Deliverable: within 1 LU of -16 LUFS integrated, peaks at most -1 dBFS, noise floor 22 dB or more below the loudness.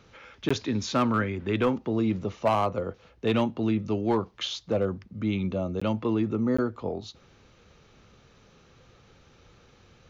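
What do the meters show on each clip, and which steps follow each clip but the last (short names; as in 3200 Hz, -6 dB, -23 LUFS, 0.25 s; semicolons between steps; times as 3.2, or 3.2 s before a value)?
clipped 0.4%; flat tops at -16.5 dBFS; dropouts 3; longest dropout 15 ms; loudness -28.0 LUFS; peak -16.5 dBFS; loudness target -16.0 LUFS
-> clip repair -16.5 dBFS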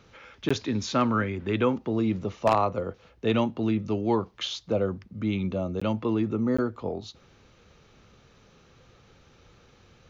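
clipped 0.0%; dropouts 3; longest dropout 15 ms
-> interpolate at 0.49/5.8/6.57, 15 ms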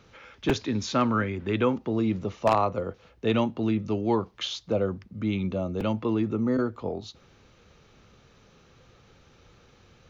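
dropouts 0; loudness -27.5 LUFS; peak -7.5 dBFS; loudness target -16.0 LUFS
-> gain +11.5 dB; limiter -1 dBFS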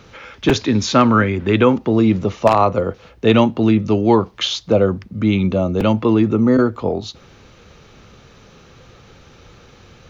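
loudness -16.5 LUFS; peak -1.0 dBFS; noise floor -47 dBFS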